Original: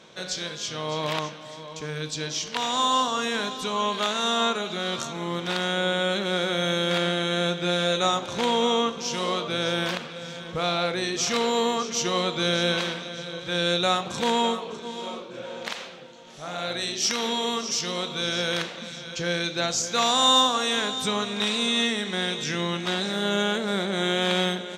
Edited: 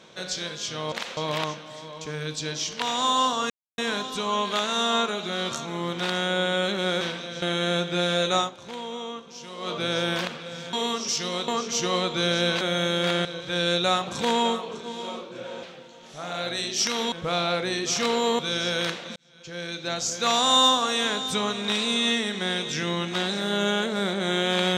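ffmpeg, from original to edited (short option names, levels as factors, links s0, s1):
-filter_complex "[0:a]asplit=16[s0][s1][s2][s3][s4][s5][s6][s7][s8][s9][s10][s11][s12][s13][s14][s15];[s0]atrim=end=0.922[s16];[s1]atrim=start=15.618:end=15.872[s17];[s2]atrim=start=0.918:end=3.25,asetpts=PTS-STARTPTS,afade=t=out:st=2.328:d=0.004:c=hsin,apad=pad_dur=0.28[s18];[s3]atrim=start=3.25:end=6.482,asetpts=PTS-STARTPTS,afade=t=in:d=0.004:c=hsin[s19];[s4]atrim=start=12.828:end=13.242[s20];[s5]atrim=start=7.118:end=8.26,asetpts=PTS-STARTPTS,afade=t=out:st=0.992:d=0.15:c=qua:silence=0.251189[s21];[s6]atrim=start=8.26:end=9.26,asetpts=PTS-STARTPTS,volume=0.251[s22];[s7]atrim=start=9.26:end=10.432,asetpts=PTS-STARTPTS,afade=t=in:d=0.15:c=qua:silence=0.251189[s23];[s8]atrim=start=17.358:end=18.112[s24];[s9]atrim=start=11.698:end=12.832[s25];[s10]atrim=start=6.478:end=7.122[s26];[s11]atrim=start=13.238:end=15.622[s27];[s12]atrim=start=15.868:end=17.362[s28];[s13]atrim=start=10.428:end=11.702[s29];[s14]atrim=start=18.108:end=18.88,asetpts=PTS-STARTPTS,afade=t=out:st=0.768:d=0.004:c=hsin[s30];[s15]atrim=start=18.88,asetpts=PTS-STARTPTS,afade=t=in:d=1.11[s31];[s16][s17]acrossfade=d=0.004:c1=hsin:c2=hsin[s32];[s18][s19]concat=n=2:v=0:a=1[s33];[s32][s33]acrossfade=d=0.004:c1=hsin:c2=hsin[s34];[s34][s20]acrossfade=d=0.004:c1=hsin:c2=hsin[s35];[s21][s22][s23]concat=n=3:v=0:a=1[s36];[s35][s36]acrossfade=d=0.004:c1=hsin:c2=hsin[s37];[s37][s24]acrossfade=d=0.004:c1=hsin:c2=hsin[s38];[s38][s25]acrossfade=d=0.004:c1=hsin:c2=hsin[s39];[s39][s26]acrossfade=d=0.004:c1=hsin:c2=hsin[s40];[s40][s27]acrossfade=d=0.004:c1=hsin:c2=hsin[s41];[s41][s28]acrossfade=d=0.004:c1=hsin:c2=hsin[s42];[s42][s29]acrossfade=d=0.004:c1=hsin:c2=hsin[s43];[s30][s31]concat=n=2:v=0:a=1[s44];[s43][s44]acrossfade=d=0.004:c1=hsin:c2=hsin"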